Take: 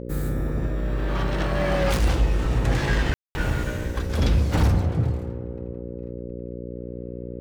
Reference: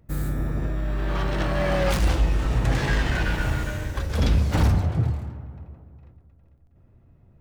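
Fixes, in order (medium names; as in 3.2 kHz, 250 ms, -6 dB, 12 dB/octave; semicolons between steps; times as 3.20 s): de-hum 60.1 Hz, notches 9; 6.25–6.37 s: high-pass 140 Hz 24 dB/octave; room tone fill 3.14–3.35 s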